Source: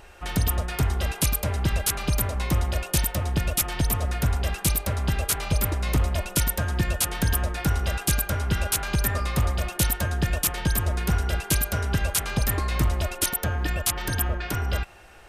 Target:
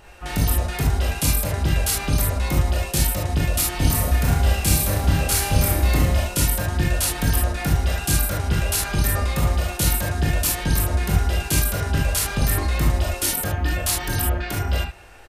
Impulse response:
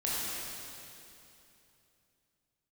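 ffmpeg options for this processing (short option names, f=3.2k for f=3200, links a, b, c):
-filter_complex "[0:a]asplit=3[a][b][c];[a]afade=t=out:st=3.77:d=0.02[d];[b]aecho=1:1:30|66|109.2|161|223.2:0.631|0.398|0.251|0.158|0.1,afade=t=in:st=3.77:d=0.02,afade=t=out:st=6.21:d=0.02[e];[c]afade=t=in:st=6.21:d=0.02[f];[d][e][f]amix=inputs=3:normalize=0[g];[1:a]atrim=start_sample=2205,atrim=end_sample=3528[h];[g][h]afir=irnorm=-1:irlink=0"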